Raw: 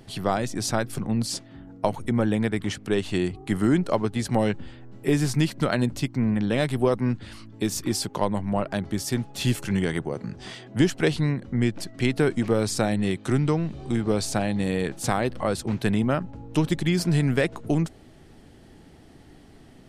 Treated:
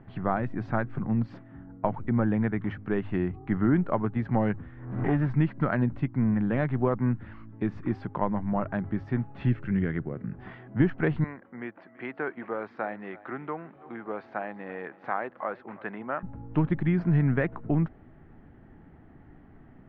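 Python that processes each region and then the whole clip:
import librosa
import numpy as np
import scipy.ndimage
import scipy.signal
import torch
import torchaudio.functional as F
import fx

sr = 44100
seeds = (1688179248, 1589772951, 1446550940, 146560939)

y = fx.chain(x, sr, fx.lower_of_two(delay_ms=0.55),
    fx.pre_swell(db_per_s=74.0), at=(4.56, 5.3))
y = fx.chain(y, sr, fx.peak_eq(hz=890.0, db=-11.0, octaves=0.77),
    fx.resample_linear(factor=2), at=(9.49, 10.32))
y = fx.chain(y, sr, fx.highpass(hz=520.0, slope=12),
    fx.air_absorb(metres=130.0),
    fx.echo_single(ms=333, db=-19.5), at=(11.24, 16.23))
y = scipy.signal.sosfilt(scipy.signal.butter(4, 1800.0, 'lowpass', fs=sr, output='sos'), y)
y = fx.peak_eq(y, sr, hz=470.0, db=-6.0, octaves=1.3)
y = fx.hum_notches(y, sr, base_hz=50, count=2)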